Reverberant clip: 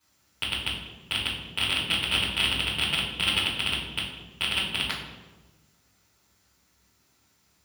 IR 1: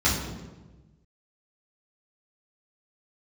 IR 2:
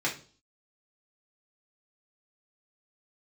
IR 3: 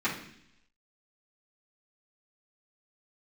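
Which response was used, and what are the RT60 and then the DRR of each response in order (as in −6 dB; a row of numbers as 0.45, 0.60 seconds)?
1; 1.2, 0.40, 0.70 seconds; −9.0, −4.5, −11.5 decibels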